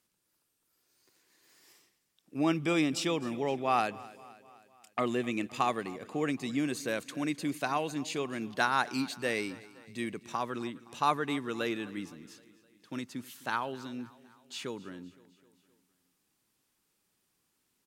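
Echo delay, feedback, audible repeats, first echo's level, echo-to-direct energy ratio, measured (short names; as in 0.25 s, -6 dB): 0.258 s, 56%, 3, -20.0 dB, -18.5 dB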